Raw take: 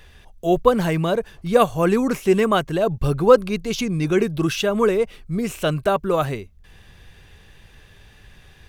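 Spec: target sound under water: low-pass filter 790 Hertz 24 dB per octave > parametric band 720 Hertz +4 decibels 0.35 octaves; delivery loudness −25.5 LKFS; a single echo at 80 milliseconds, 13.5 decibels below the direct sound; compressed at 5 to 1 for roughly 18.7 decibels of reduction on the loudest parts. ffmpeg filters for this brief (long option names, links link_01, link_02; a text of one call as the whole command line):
ffmpeg -i in.wav -af "acompressor=threshold=-29dB:ratio=5,lowpass=frequency=790:width=0.5412,lowpass=frequency=790:width=1.3066,equalizer=frequency=720:width_type=o:width=0.35:gain=4,aecho=1:1:80:0.211,volume=7dB" out.wav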